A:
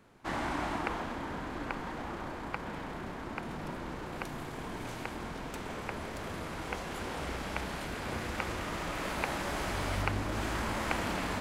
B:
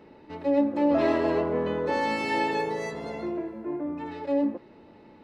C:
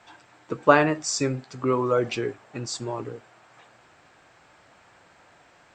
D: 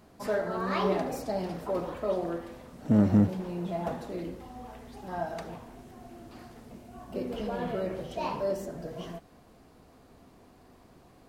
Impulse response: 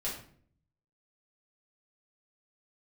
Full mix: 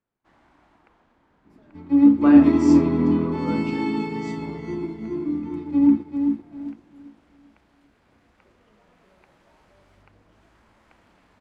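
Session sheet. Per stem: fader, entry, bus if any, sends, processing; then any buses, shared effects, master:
-11.5 dB, 0.00 s, no send, no echo send, none
-1.0 dB, 1.45 s, no send, echo send -4 dB, resonant low shelf 420 Hz +10 dB, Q 1.5; comb 0.9 ms, depth 75%
-13.0 dB, 1.55 s, send -3 dB, no echo send, none
-13.0 dB, 1.30 s, no send, no echo send, compression, threshold -32 dBFS, peak gain reduction 14.5 dB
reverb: on, RT60 0.55 s, pre-delay 4 ms
echo: feedback delay 393 ms, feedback 40%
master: treble shelf 7.7 kHz -8.5 dB; upward expansion 1.5:1, over -34 dBFS

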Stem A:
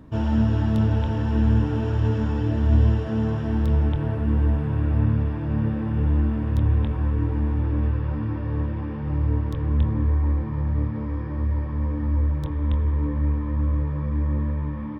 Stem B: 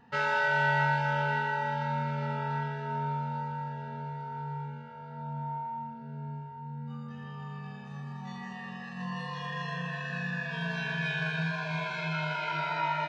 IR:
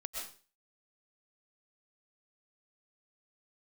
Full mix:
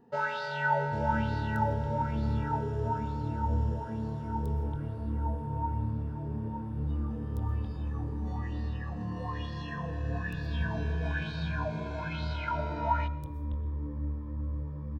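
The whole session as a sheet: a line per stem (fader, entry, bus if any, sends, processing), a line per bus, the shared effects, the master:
-7.5 dB, 0.80 s, send -9.5 dB, treble shelf 5.5 kHz +11 dB
+1.0 dB, 0.00 s, send -18.5 dB, sweeping bell 1.1 Hz 350–4500 Hz +16 dB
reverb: on, RT60 0.40 s, pre-delay 85 ms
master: peaking EQ 2.4 kHz -11.5 dB 2.1 oct; feedback comb 120 Hz, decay 1.5 s, mix 50%

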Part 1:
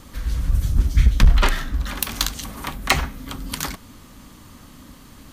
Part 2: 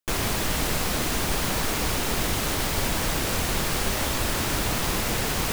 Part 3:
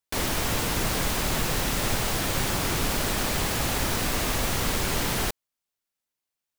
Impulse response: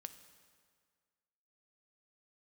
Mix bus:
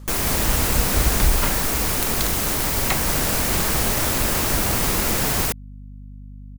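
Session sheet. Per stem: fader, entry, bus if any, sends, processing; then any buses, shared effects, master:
-6.5 dB, 0.00 s, no send, none
+1.5 dB, 0.00 s, no send, treble shelf 8.4 kHz +8.5 dB
-0.5 dB, 0.15 s, muted 1.28–3.07 s, no send, none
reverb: none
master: peaking EQ 3.4 kHz -3 dB; hum 50 Hz, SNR 17 dB

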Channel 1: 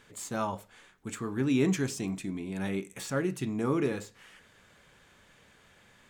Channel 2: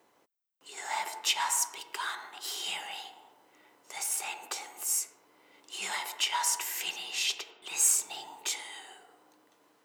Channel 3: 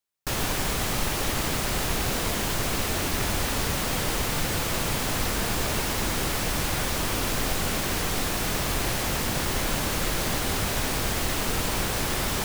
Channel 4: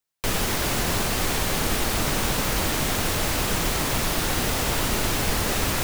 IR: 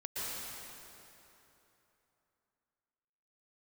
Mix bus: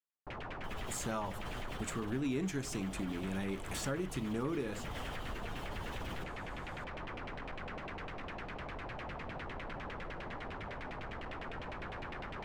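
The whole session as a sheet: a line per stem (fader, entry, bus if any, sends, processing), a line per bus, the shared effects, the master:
+1.5 dB, 0.75 s, no send, none
mute
-15.0 dB, 0.00 s, send -16 dB, overload inside the chain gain 26 dB; LFO low-pass saw down 9.9 Hz 610–2800 Hz
-18.5 dB, 0.40 s, no send, spectral contrast enhancement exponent 1.8; peaking EQ 3.1 kHz +12 dB 0.45 oct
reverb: on, RT60 3.2 s, pre-delay 108 ms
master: compression 3:1, threshold -36 dBFS, peak gain reduction 12.5 dB

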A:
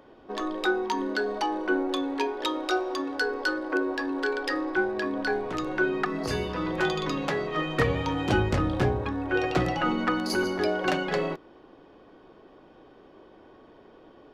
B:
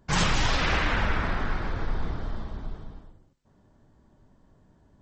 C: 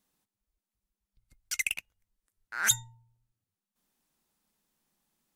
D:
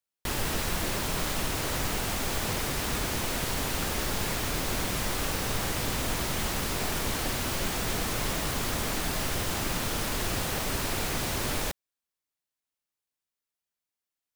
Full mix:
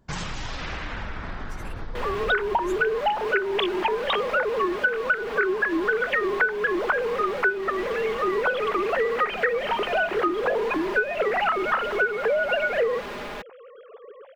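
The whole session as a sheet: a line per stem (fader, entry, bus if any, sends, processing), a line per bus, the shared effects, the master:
0.0 dB, 1.65 s, no send, formants replaced by sine waves; level rider gain up to 10.5 dB
-1.5 dB, 0.00 s, no send, compression 6:1, threshold -27 dBFS, peak gain reduction 8 dB
-19.5 dB, 0.00 s, no send, phase randomisation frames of 50 ms
+1.5 dB, 1.70 s, no send, three-band isolator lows -13 dB, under 230 Hz, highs -24 dB, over 3.2 kHz; comb 4.9 ms; saturation -31 dBFS, distortion -13 dB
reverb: none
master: compression 6:1, threshold -20 dBFS, peak gain reduction 13 dB

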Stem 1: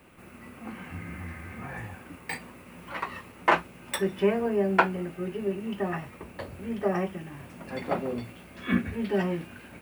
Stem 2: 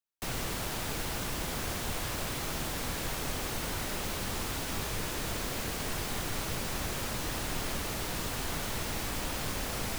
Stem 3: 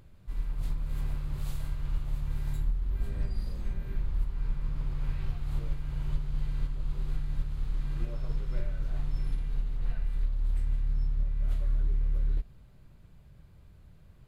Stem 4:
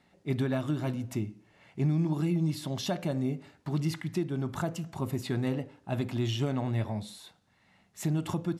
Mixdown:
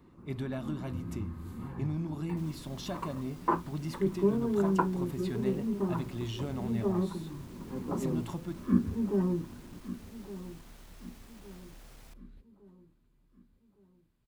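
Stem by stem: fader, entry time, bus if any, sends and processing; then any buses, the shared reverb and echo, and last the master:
+0.5 dB, 0.00 s, no send, echo send -14.5 dB, FFT filter 340 Hz 0 dB, 700 Hz -18 dB, 1 kHz -3 dB, 2.1 kHz -27 dB
-20.0 dB, 2.15 s, no send, no echo send, saturation -30 dBFS, distortion -16 dB
-18.0 dB, 0.00 s, no send, echo send -17 dB, tilt EQ +2 dB/octave
-7.0 dB, 0.00 s, no send, no echo send, none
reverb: none
echo: feedback delay 1162 ms, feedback 43%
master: none

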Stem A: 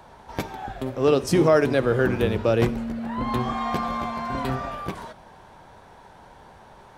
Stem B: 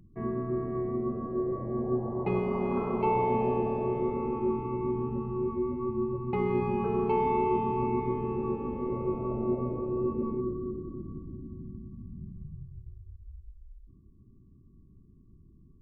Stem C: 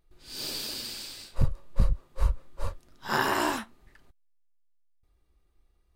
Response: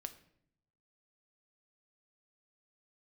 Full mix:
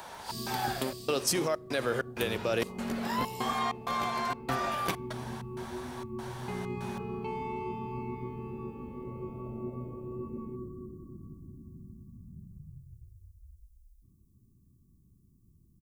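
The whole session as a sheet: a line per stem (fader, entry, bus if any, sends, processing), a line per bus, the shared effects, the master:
-1.5 dB, 0.00 s, send -12.5 dB, peak limiter -13.5 dBFS, peak gain reduction 7.5 dB; trance gate "xx.xxx.xxx." 97 bpm -60 dB
-13.5 dB, 0.15 s, no send, tone controls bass +15 dB, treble +14 dB
-9.0 dB, 0.00 s, no send, steep high-pass 2.6 kHz; compression, threshold -43 dBFS, peak gain reduction 10.5 dB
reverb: on, RT60 0.65 s, pre-delay 6 ms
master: tilt EQ +3 dB/octave; gain riding within 4 dB 0.5 s

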